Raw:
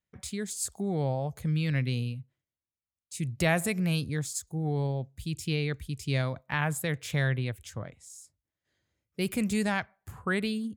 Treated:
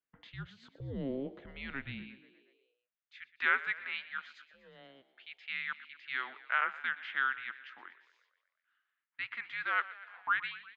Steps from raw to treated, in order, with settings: high-pass sweep 210 Hz -> 1700 Hz, 1.67–2.61; mistuned SSB -270 Hz 430–3600 Hz; frequency-shifting echo 0.12 s, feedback 64%, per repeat +46 Hz, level -17 dB; gain -4 dB

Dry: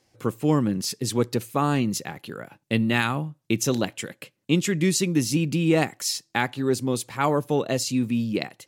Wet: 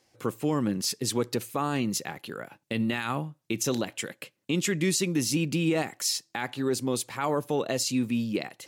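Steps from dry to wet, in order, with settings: low shelf 200 Hz -7.5 dB; limiter -16.5 dBFS, peak gain reduction 10 dB; reverse; upward compressor, threshold -43 dBFS; reverse

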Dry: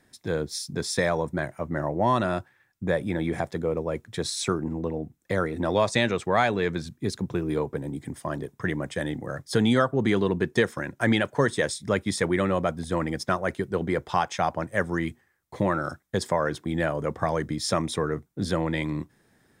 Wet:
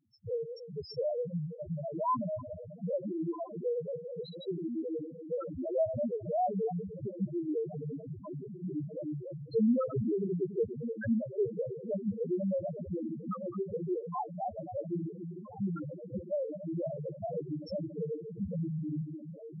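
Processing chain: regenerating reverse delay 0.143 s, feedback 60%, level -9 dB; diffused feedback echo 1.349 s, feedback 60%, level -10 dB; loudest bins only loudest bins 1; gain +1 dB

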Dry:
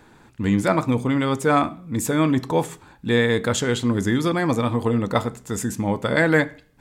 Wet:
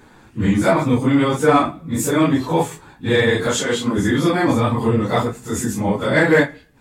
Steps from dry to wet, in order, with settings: phase scrambler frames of 0.1 s; 3.47–3.98 HPF 240 Hz 6 dB/oct; in parallel at -5 dB: hard clip -12.5 dBFS, distortion -19 dB

